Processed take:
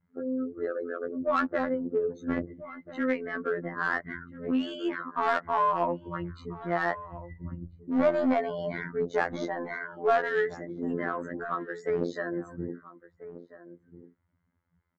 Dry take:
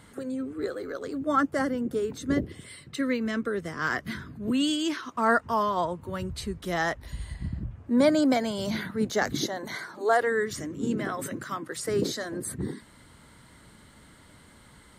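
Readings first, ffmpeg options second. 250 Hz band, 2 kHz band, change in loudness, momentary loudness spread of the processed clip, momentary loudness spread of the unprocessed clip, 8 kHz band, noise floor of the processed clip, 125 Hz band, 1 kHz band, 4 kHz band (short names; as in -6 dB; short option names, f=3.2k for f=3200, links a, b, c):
-4.0 dB, -1.5 dB, -2.0 dB, 15 LU, 12 LU, under -20 dB, -74 dBFS, -5.0 dB, -0.5 dB, -11.5 dB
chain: -filter_complex "[0:a]afftdn=nr=30:nf=-38,highshelf=f=2.8k:t=q:w=1.5:g=-7.5,aresample=16000,aeval=exprs='clip(val(0),-1,0.0891)':c=same,aresample=44100,asplit=2[a][b];[b]highpass=f=720:p=1,volume=15dB,asoftclip=type=tanh:threshold=-10dB[c];[a][c]amix=inputs=2:normalize=0,lowpass=f=1k:p=1,volume=-6dB,afftfilt=real='hypot(re,im)*cos(PI*b)':imag='0':win_size=2048:overlap=0.75,asplit=2[d][e];[e]adelay=1341,volume=-15dB,highshelf=f=4k:g=-30.2[f];[d][f]amix=inputs=2:normalize=0"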